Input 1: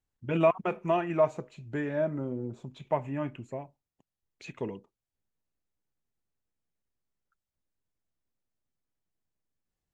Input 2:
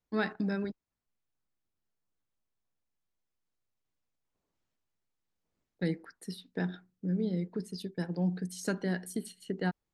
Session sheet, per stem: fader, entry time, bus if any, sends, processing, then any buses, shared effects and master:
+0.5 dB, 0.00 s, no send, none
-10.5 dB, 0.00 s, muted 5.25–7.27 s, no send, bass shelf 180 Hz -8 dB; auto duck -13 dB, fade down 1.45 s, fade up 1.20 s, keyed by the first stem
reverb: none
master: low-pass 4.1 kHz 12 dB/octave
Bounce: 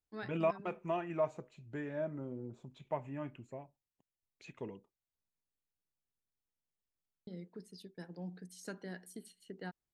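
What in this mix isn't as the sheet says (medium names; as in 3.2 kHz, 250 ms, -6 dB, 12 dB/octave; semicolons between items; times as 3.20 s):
stem 1 +0.5 dB -> -9.0 dB; master: missing low-pass 4.1 kHz 12 dB/octave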